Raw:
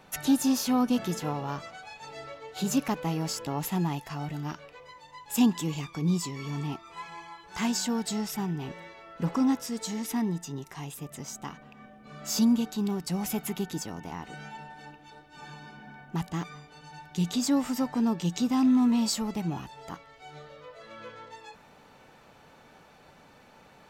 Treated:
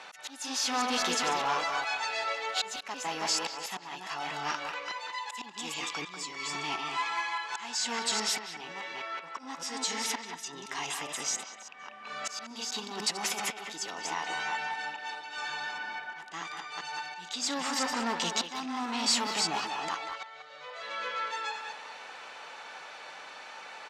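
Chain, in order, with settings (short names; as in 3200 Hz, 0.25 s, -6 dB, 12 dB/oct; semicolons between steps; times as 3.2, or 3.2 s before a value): reverse delay 0.205 s, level -7.5 dB; auto swell 0.774 s; 12.74–13.4 negative-ratio compressor -35 dBFS, ratio -1; overdrive pedal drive 19 dB, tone 1100 Hz, clips at -15.5 dBFS; weighting filter ITU-R 468; speakerphone echo 0.19 s, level -6 dB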